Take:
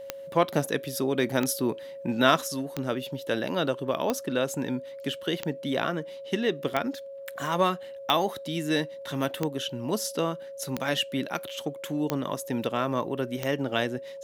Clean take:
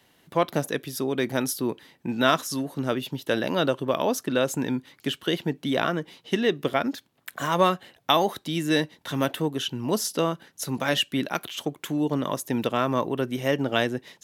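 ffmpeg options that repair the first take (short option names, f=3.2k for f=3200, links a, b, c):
-af "adeclick=t=4,bandreject=f=550:w=30,asetnsamples=n=441:p=0,asendcmd='2.48 volume volume 3.5dB',volume=0dB"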